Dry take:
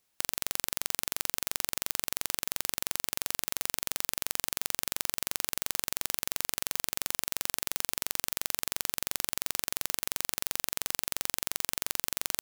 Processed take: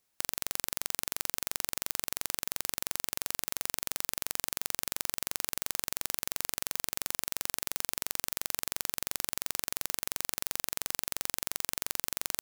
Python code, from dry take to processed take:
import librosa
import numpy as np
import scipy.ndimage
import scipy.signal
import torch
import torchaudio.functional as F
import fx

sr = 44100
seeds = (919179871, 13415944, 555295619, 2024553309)

y = fx.peak_eq(x, sr, hz=3100.0, db=-2.0, octaves=0.77)
y = y * 10.0 ** (-1.5 / 20.0)